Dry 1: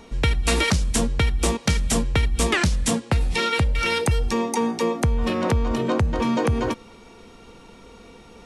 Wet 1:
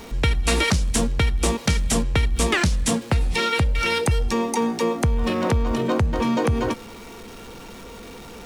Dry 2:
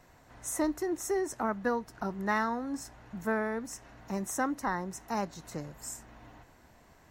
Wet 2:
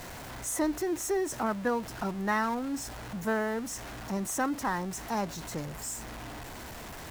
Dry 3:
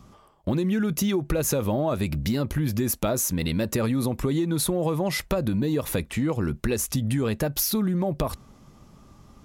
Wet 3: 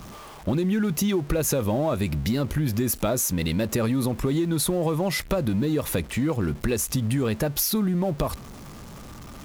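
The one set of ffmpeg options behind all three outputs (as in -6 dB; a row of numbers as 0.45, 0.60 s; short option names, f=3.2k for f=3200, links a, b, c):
-af "aeval=exprs='val(0)+0.5*0.0126*sgn(val(0))':c=same"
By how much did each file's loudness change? +0.5, +1.0, +0.5 LU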